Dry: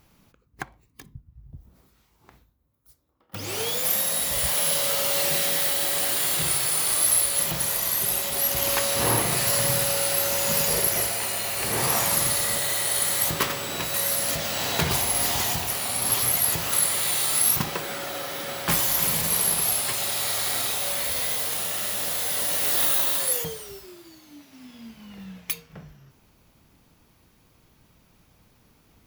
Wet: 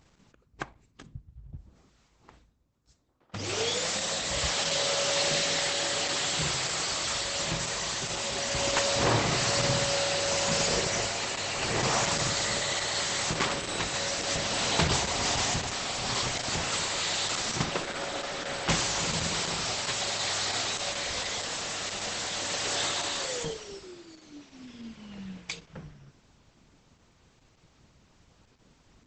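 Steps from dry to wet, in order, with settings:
Opus 10 kbit/s 48,000 Hz

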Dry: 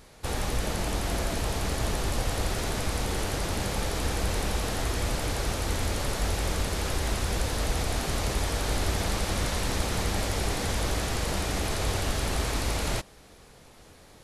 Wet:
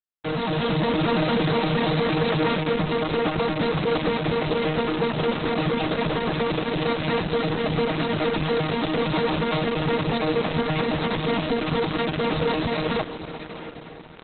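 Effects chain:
vocoder with an arpeggio as carrier bare fifth, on D#3, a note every 116 ms
in parallel at −3 dB: brickwall limiter −29 dBFS, peak gain reduction 9 dB
on the sum: reverb reduction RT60 0.71 s
0:05.70–0:06.49: notch filter 4,200 Hz, Q 7.6
0:07.12–0:08.12: low-shelf EQ 130 Hz +2.5 dB
comb filter 6.4 ms, depth 61%
log-companded quantiser 2 bits
feedback delay with all-pass diffusion 645 ms, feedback 50%, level −12 dB
automatic gain control gain up to 5 dB
dynamic equaliser 5,000 Hz, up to +5 dB, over −45 dBFS, Q 1.4
Opus 8 kbit/s 48,000 Hz

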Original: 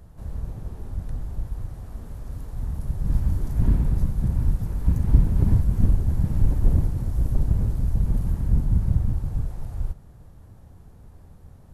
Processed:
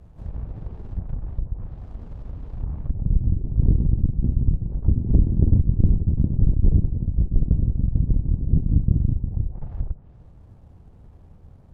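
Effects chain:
running median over 25 samples
harmonic generator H 6 −13 dB, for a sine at −4 dBFS
treble cut that deepens with the level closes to 370 Hz, closed at −19 dBFS

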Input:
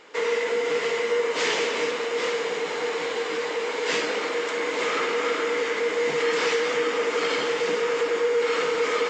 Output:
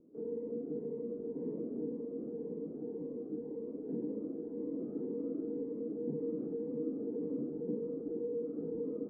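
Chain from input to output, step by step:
transistor ladder low-pass 310 Hz, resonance 45%
phaser whose notches keep moving one way rising 1.9 Hz
level +6 dB

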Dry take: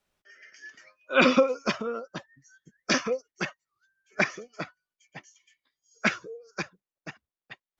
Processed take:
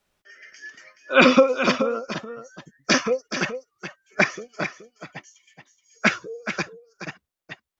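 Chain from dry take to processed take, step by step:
single-tap delay 425 ms −10 dB
level +5.5 dB

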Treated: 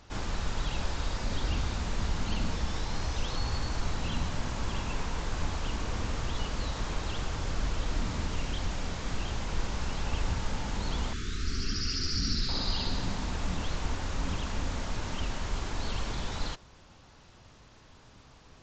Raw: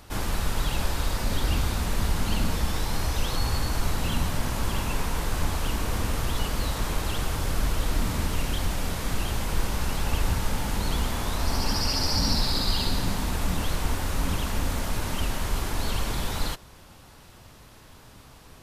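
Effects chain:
0:11.13–0:12.49: elliptic band-stop filter 410–1,300 Hz, stop band 40 dB
level −5.5 dB
SBC 64 kbit/s 16,000 Hz

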